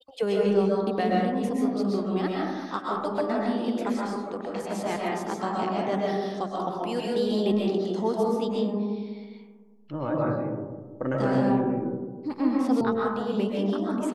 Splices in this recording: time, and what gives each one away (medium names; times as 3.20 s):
12.81 s: sound stops dead